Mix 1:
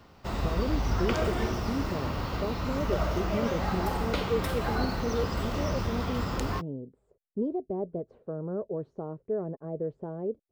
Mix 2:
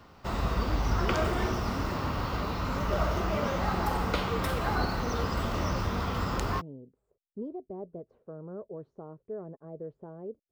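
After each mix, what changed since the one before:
speech -8.0 dB; master: add bell 1200 Hz +3.5 dB 0.88 oct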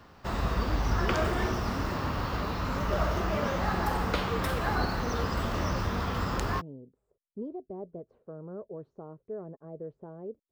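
background: remove notch 1700 Hz, Q 12

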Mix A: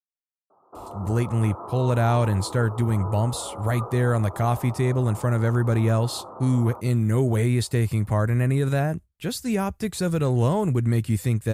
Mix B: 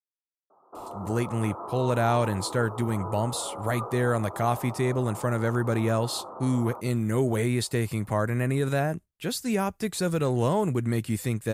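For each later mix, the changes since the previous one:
master: add bell 60 Hz -14 dB 1.9 oct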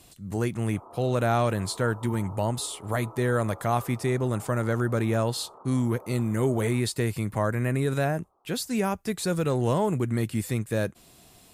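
speech: entry -0.75 s; background -9.0 dB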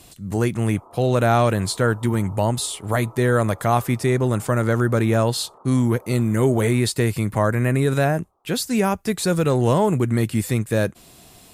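speech +6.5 dB

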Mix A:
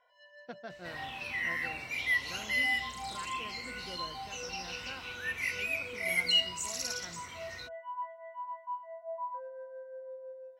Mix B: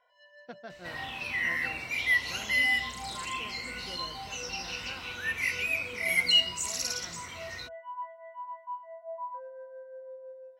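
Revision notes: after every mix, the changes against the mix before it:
second sound +4.0 dB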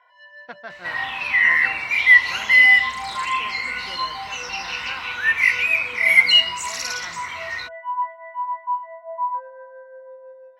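master: add graphic EQ 1000/2000/4000 Hz +12/+11/+4 dB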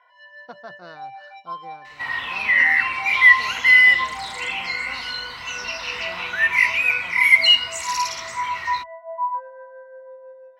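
speech: add band shelf 2300 Hz -14.5 dB 1.2 oct; second sound: entry +1.15 s

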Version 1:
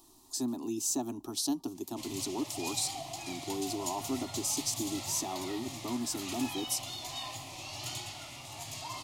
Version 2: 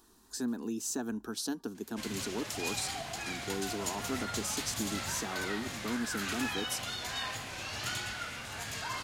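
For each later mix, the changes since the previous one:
speech -5.0 dB; master: remove fixed phaser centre 310 Hz, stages 8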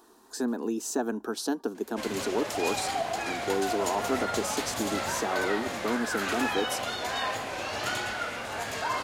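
speech: add low shelf 140 Hz -11.5 dB; master: add EQ curve 150 Hz 0 dB, 220 Hz +6 dB, 560 Hz +14 dB, 1200 Hz +8 dB, 3000 Hz +3 dB, 5800 Hz +1 dB

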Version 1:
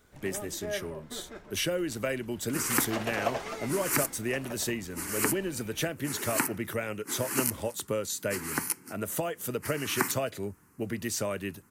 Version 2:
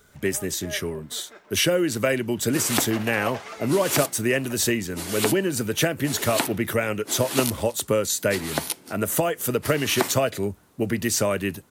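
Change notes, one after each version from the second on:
speech +9.0 dB; first sound: add weighting filter A; second sound: remove fixed phaser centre 1500 Hz, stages 4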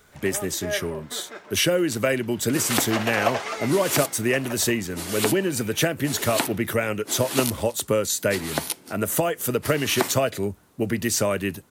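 first sound +8.0 dB

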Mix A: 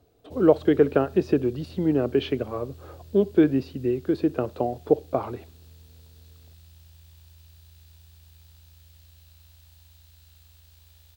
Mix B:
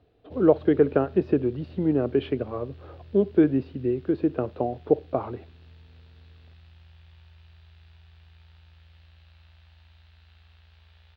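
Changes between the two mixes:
background: add bell 2300 Hz +9.5 dB 2.9 oct; master: add air absorption 360 m

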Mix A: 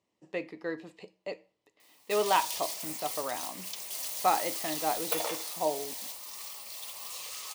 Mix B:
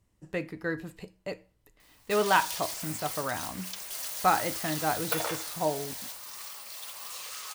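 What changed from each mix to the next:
speech: remove BPF 330–5300 Hz; master: add bell 1500 Hz +11 dB 0.44 oct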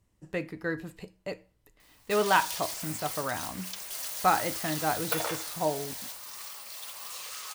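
none

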